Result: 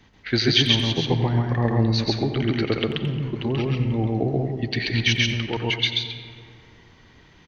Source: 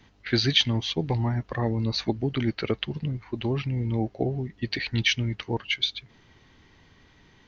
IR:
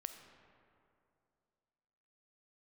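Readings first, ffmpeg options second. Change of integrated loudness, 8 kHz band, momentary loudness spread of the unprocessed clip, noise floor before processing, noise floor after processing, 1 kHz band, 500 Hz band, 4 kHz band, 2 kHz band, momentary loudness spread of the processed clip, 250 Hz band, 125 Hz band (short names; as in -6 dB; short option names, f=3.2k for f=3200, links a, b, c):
+4.5 dB, n/a, 9 LU, -58 dBFS, -53 dBFS, +5.0 dB, +5.0 dB, +4.5 dB, +4.5 dB, 7 LU, +4.5 dB, +5.0 dB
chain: -filter_complex "[0:a]asplit=2[a][b];[b]adelay=90,highpass=300,lowpass=3.4k,asoftclip=type=hard:threshold=-14dB,volume=-11dB[c];[a][c]amix=inputs=2:normalize=0,asplit=2[d][e];[1:a]atrim=start_sample=2205,adelay=134[f];[e][f]afir=irnorm=-1:irlink=0,volume=3dB[g];[d][g]amix=inputs=2:normalize=0,volume=1.5dB"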